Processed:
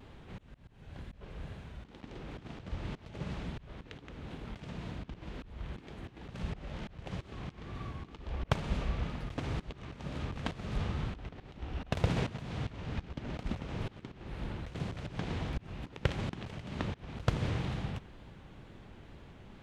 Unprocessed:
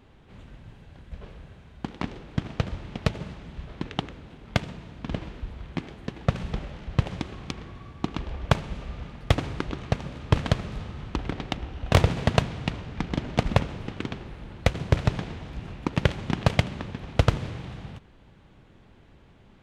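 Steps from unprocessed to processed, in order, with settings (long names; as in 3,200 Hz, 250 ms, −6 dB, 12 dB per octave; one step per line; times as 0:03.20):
pitch vibrato 2.1 Hz 70 cents
volume swells 323 ms
level +2.5 dB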